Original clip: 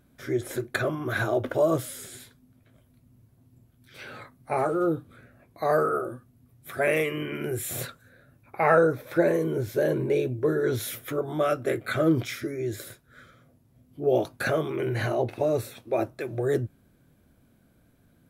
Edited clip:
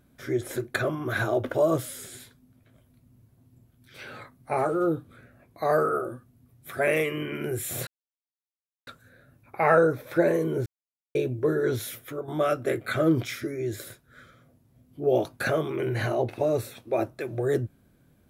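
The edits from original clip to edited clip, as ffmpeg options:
ffmpeg -i in.wav -filter_complex "[0:a]asplit=5[link_01][link_02][link_03][link_04][link_05];[link_01]atrim=end=7.87,asetpts=PTS-STARTPTS,afade=type=out:start_time=7.866:duration=0.004:curve=hsin,apad=pad_dur=1[link_06];[link_02]atrim=start=7.87:end=9.66,asetpts=PTS-STARTPTS,afade=type=in:duration=0.004:curve=hsin,afade=type=out:start_time=1.786:duration=0.004:curve=hsin[link_07];[link_03]atrim=start=9.66:end=10.15,asetpts=PTS-STARTPTS,volume=0[link_08];[link_04]atrim=start=10.15:end=11.28,asetpts=PTS-STARTPTS,afade=type=in:duration=0.004:curve=hsin,afade=type=out:start_time=0.55:duration=0.58:curve=qua:silence=0.501187[link_09];[link_05]atrim=start=11.28,asetpts=PTS-STARTPTS,afade=type=in:duration=0.004:curve=hsin:silence=0.501187[link_10];[link_06][link_07][link_08][link_09][link_10]concat=n=5:v=0:a=1" out.wav

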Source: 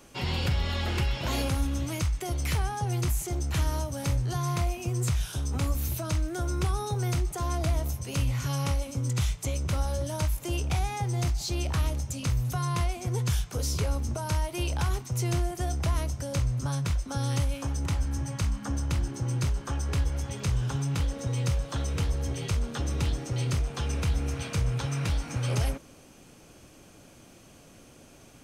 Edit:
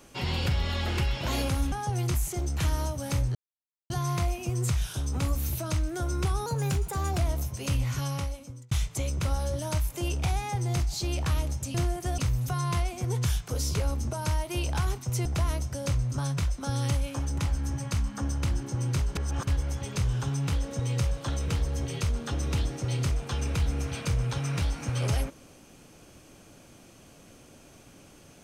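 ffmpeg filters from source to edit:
ffmpeg -i in.wav -filter_complex "[0:a]asplit=11[link_01][link_02][link_03][link_04][link_05][link_06][link_07][link_08][link_09][link_10][link_11];[link_01]atrim=end=1.722[link_12];[link_02]atrim=start=2.658:end=4.29,asetpts=PTS-STARTPTS,afade=type=out:start_time=1.628:duration=0.004:curve=hsin,apad=pad_dur=0.55[link_13];[link_03]atrim=start=4.29:end=6.854,asetpts=PTS-STARTPTS,afade=type=in:duration=0.004:curve=hsin[link_14];[link_04]atrim=start=6.85:end=7.66,asetpts=PTS-STARTPTS,asetrate=49392,aresample=44100[link_15];[link_05]atrim=start=7.656:end=9.19,asetpts=PTS-STARTPTS,afade=type=out:start_time=0.754:duration=0.78[link_16];[link_06]atrim=start=9.19:end=12.222,asetpts=PTS-STARTPTS,afade=type=in:duration=0.004:curve=hsin[link_17];[link_07]atrim=start=15.288:end=15.732[link_18];[link_08]atrim=start=12.218:end=15.292[link_19];[link_09]atrim=start=15.728:end=19.632[link_20];[link_10]atrim=start=19.628:end=19.952,asetpts=PTS-STARTPTS,areverse[link_21];[link_11]atrim=start=19.948[link_22];[link_13][link_14]concat=n=2:v=0:a=1[link_23];[link_12][link_23]acrossfade=duration=0.004:curve1=hsin:curve2=hsin[link_24];[link_24][link_15]acrossfade=duration=0.004:curve1=hsin:curve2=hsin[link_25];[link_16][link_17]concat=n=2:v=0:a=1[link_26];[link_25][link_26]acrossfade=duration=0.004:curve1=hsin:curve2=hsin[link_27];[link_27][link_18]acrossfade=duration=0.004:curve1=hsin:curve2=hsin[link_28];[link_28][link_19]acrossfade=duration=0.004:curve1=hsin:curve2=hsin[link_29];[link_29][link_20]acrossfade=duration=0.004:curve1=hsin:curve2=hsin[link_30];[link_30][link_21]acrossfade=duration=0.004:curve1=hsin:curve2=hsin[link_31];[link_31][link_22]acrossfade=duration=0.004:curve1=hsin:curve2=hsin" out.wav

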